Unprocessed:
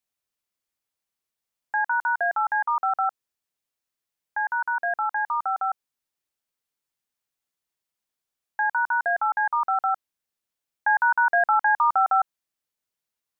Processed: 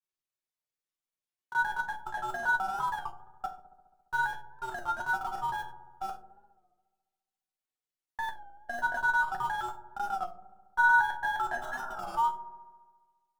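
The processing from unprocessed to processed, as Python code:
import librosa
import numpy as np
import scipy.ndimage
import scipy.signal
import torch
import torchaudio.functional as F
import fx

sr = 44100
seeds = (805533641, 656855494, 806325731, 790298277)

p1 = fx.block_reorder(x, sr, ms=128.0, group=4)
p2 = fx.schmitt(p1, sr, flips_db=-27.0)
p3 = p1 + F.gain(torch.from_numpy(p2), -8.0).numpy()
p4 = fx.spec_repair(p3, sr, seeds[0], start_s=11.64, length_s=0.52, low_hz=480.0, high_hz=1600.0, source='before')
p5 = fx.resonator_bank(p4, sr, root=47, chord='major', decay_s=0.23)
p6 = fx.granulator(p5, sr, seeds[1], grain_ms=100.0, per_s=20.0, spray_ms=20.0, spread_st=0)
p7 = p6 + fx.echo_wet_lowpass(p6, sr, ms=69, feedback_pct=72, hz=610.0, wet_db=-9.0, dry=0)
p8 = fx.record_warp(p7, sr, rpm=33.33, depth_cents=100.0)
y = F.gain(torch.from_numpy(p8), 5.0).numpy()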